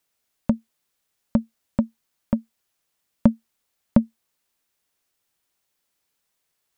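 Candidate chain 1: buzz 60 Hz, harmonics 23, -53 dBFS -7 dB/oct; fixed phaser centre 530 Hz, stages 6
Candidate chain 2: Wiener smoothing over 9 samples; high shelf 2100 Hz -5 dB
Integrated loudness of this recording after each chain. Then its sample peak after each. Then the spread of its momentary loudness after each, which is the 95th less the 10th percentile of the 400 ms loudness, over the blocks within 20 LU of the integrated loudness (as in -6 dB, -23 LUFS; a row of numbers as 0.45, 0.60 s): -29.0, -26.0 LUFS; -6.5, -2.5 dBFS; 10, 9 LU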